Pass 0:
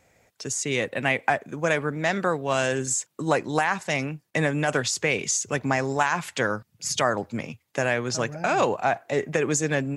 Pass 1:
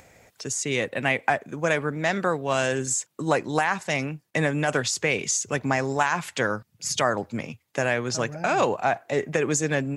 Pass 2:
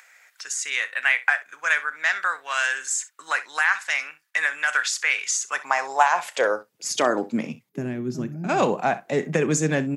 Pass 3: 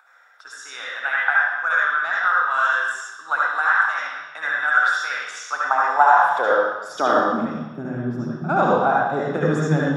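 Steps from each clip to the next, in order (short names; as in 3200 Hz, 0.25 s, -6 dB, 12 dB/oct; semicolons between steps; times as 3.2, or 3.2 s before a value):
upward compressor, threshold -45 dBFS
spectral gain 7.69–8.49, 420–11000 Hz -16 dB; high-pass sweep 1500 Hz -> 180 Hz, 5.25–7.66; early reflections 32 ms -16.5 dB, 64 ms -17 dB
reverb RT60 1.1 s, pre-delay 55 ms, DRR -4 dB; gain -9 dB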